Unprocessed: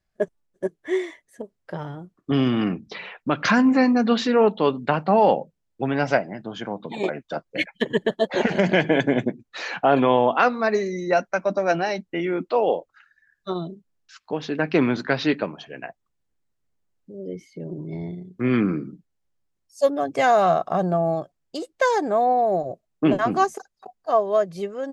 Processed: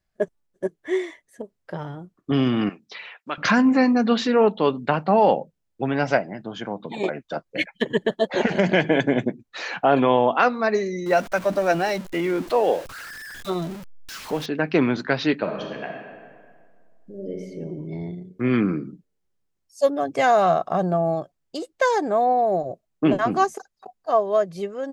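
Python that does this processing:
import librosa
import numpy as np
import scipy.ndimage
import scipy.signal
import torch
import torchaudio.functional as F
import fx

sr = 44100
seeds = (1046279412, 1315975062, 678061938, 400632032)

y = fx.highpass(x, sr, hz=1400.0, slope=6, at=(2.69, 3.38))
y = fx.zero_step(y, sr, step_db=-32.5, at=(11.06, 14.46))
y = fx.reverb_throw(y, sr, start_s=15.39, length_s=2.06, rt60_s=1.9, drr_db=0.5)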